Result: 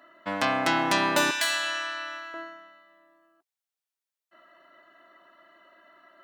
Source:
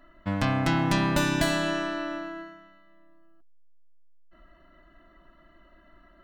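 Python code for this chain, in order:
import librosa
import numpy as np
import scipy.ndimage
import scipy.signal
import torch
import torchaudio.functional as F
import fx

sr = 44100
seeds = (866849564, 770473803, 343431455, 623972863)

y = fx.highpass(x, sr, hz=fx.steps((0.0, 420.0), (1.31, 1400.0), (2.34, 520.0)), slope=12)
y = F.gain(torch.from_numpy(y), 4.5).numpy()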